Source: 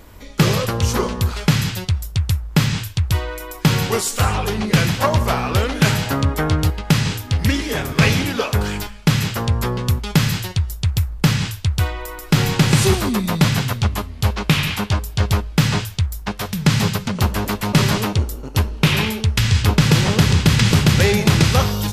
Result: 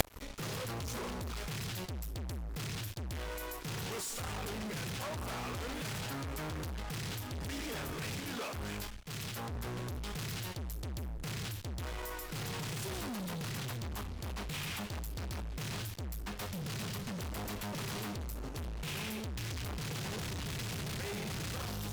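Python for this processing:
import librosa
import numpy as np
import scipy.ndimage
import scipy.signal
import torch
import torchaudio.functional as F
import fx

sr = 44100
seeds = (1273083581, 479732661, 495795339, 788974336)

y = fx.fuzz(x, sr, gain_db=39.0, gate_db=-40.0)
y = fx.gate_flip(y, sr, shuts_db=-21.0, range_db=-35)
y = fx.band_widen(y, sr, depth_pct=100, at=(8.2, 9.67))
y = y * 10.0 ** (10.0 / 20.0)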